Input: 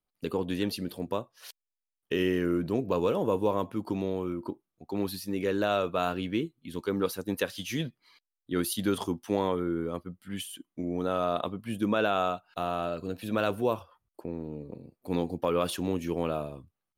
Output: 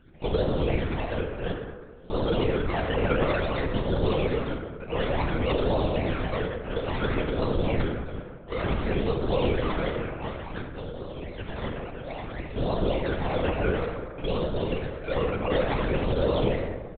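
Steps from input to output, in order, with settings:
compressor on every frequency bin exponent 0.6
high-shelf EQ 2,400 Hz +11 dB
comb filter 1.8 ms, depth 90%
brickwall limiter −15.5 dBFS, peak gain reduction 10.5 dB
0:09.88–0:12.48: compressor whose output falls as the input rises −35 dBFS, ratio −1
sample-and-hold swept by an LFO 37×, swing 60% 3.6 Hz
all-pass phaser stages 12, 0.57 Hz, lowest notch 190–2,200 Hz
dense smooth reverb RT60 1.7 s, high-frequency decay 0.45×, DRR 0.5 dB
linear-prediction vocoder at 8 kHz whisper

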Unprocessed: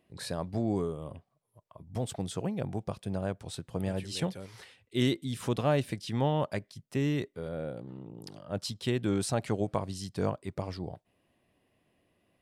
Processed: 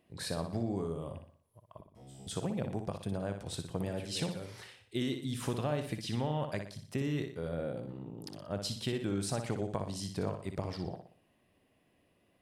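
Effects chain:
downward compressor 6 to 1, threshold −31 dBFS, peak gain reduction 9 dB
0:01.81–0:02.27: tuned comb filter 67 Hz, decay 1.4 s, harmonics all, mix 100%
on a send: flutter between parallel walls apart 10.3 metres, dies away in 0.49 s

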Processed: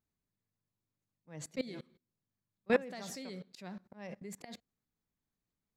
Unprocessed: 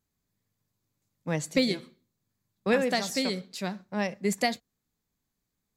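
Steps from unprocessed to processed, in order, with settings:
parametric band 11,000 Hz −8 dB 2.4 octaves
output level in coarse steps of 23 dB
volume swells 115 ms
level +2 dB

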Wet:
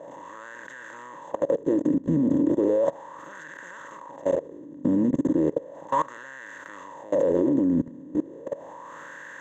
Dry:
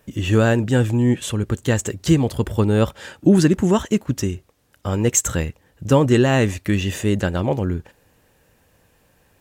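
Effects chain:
compressor on every frequency bin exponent 0.2
EQ curve with evenly spaced ripples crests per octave 1.1, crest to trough 10 dB
LFO wah 0.35 Hz 240–1,600 Hz, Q 5.1
output level in coarse steps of 21 dB

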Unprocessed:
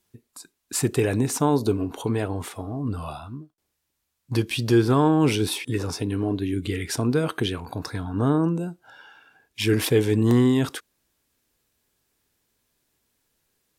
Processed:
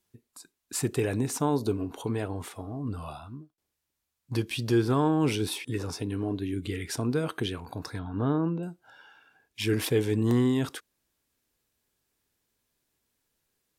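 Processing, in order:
0:07.99–0:08.63: Butterworth low-pass 4,500 Hz 36 dB per octave
level −5.5 dB

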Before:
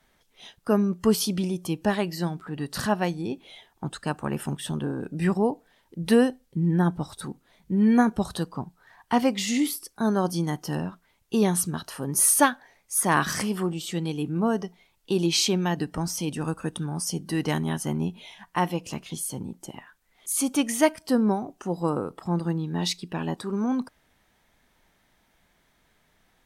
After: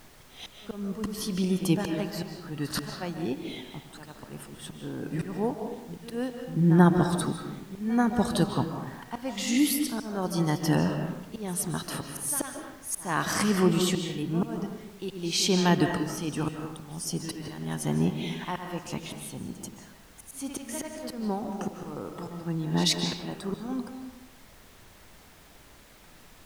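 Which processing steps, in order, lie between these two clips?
echo ahead of the sound 87 ms −14.5 dB
volume swells 747 ms
on a send at −5 dB: convolution reverb RT60 0.90 s, pre-delay 110 ms
on the sum: background noise pink −59 dBFS
level +5 dB

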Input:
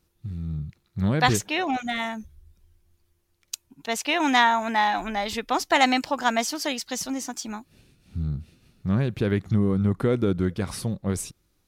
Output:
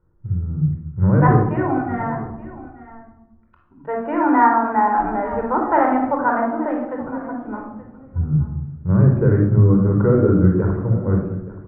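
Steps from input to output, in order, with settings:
Butterworth low-pass 1,500 Hz 36 dB per octave
on a send: single-tap delay 875 ms −17 dB
on the sum: rectangular room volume 2,900 cubic metres, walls furnished, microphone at 4.7 metres
level +2 dB

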